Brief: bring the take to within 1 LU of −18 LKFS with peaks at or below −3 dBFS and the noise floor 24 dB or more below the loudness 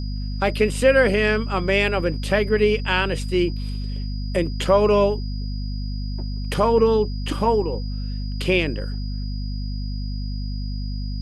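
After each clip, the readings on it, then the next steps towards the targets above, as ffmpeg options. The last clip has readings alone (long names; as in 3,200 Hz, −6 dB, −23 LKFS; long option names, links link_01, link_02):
mains hum 50 Hz; hum harmonics up to 250 Hz; level of the hum −24 dBFS; interfering tone 4,900 Hz; level of the tone −41 dBFS; integrated loudness −22.5 LKFS; sample peak −4.5 dBFS; target loudness −18.0 LKFS
→ -af "bandreject=frequency=50:width_type=h:width=4,bandreject=frequency=100:width_type=h:width=4,bandreject=frequency=150:width_type=h:width=4,bandreject=frequency=200:width_type=h:width=4,bandreject=frequency=250:width_type=h:width=4"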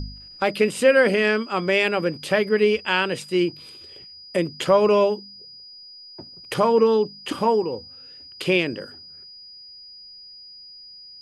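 mains hum none found; interfering tone 4,900 Hz; level of the tone −41 dBFS
→ -af "bandreject=frequency=4900:width=30"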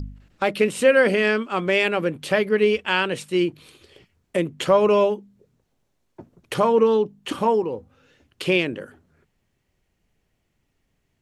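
interfering tone none found; integrated loudness −21.0 LKFS; sample peak −5.0 dBFS; target loudness −18.0 LKFS
→ -af "volume=3dB,alimiter=limit=-3dB:level=0:latency=1"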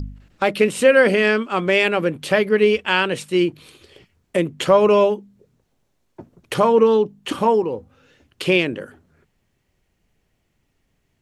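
integrated loudness −18.0 LKFS; sample peak −3.0 dBFS; background noise floor −70 dBFS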